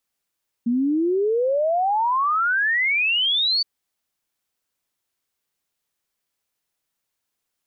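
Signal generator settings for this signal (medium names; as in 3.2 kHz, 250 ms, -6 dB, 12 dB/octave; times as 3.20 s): log sweep 230 Hz -> 4.6 kHz 2.97 s -17.5 dBFS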